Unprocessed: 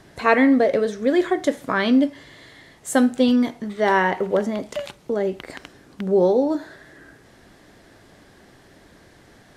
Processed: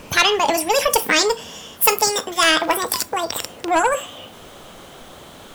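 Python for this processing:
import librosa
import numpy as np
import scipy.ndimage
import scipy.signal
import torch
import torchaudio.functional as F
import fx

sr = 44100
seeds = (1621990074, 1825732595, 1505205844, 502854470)

p1 = fx.speed_glide(x, sr, from_pct=150, to_pct=195)
p2 = fx.noise_reduce_blind(p1, sr, reduce_db=13)
p3 = 10.0 ** (-16.0 / 20.0) * np.tanh(p2 / 10.0 ** (-16.0 / 20.0))
p4 = p2 + (p3 * 10.0 ** (-10.0 / 20.0))
p5 = fx.spectral_comp(p4, sr, ratio=2.0)
y = p5 * 10.0 ** (2.5 / 20.0)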